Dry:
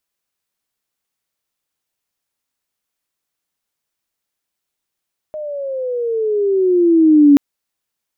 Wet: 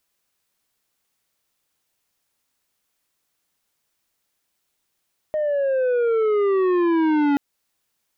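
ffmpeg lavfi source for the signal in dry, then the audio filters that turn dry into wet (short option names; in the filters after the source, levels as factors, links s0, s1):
-f lavfi -i "aevalsrc='pow(10,(-23.5+19.5*t/2.03)/20)*sin(2*PI*620*2.03/log(280/620)*(exp(log(280/620)*t/2.03)-1))':d=2.03:s=44100"
-filter_complex "[0:a]asplit=2[s0][s1];[s1]acompressor=threshold=0.112:ratio=6,volume=0.891[s2];[s0][s2]amix=inputs=2:normalize=0,asoftclip=type=tanh:threshold=0.133"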